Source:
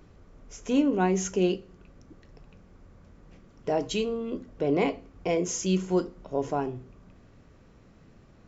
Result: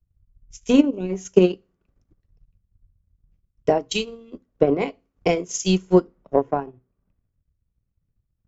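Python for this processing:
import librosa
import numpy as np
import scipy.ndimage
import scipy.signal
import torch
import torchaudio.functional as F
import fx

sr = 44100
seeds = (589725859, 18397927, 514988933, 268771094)

y = fx.spec_box(x, sr, start_s=0.86, length_s=0.24, low_hz=680.0, high_hz=2200.0, gain_db=-17)
y = fx.transient(y, sr, attack_db=11, sustain_db=-10)
y = fx.band_widen(y, sr, depth_pct=100)
y = y * librosa.db_to_amplitude(-2.0)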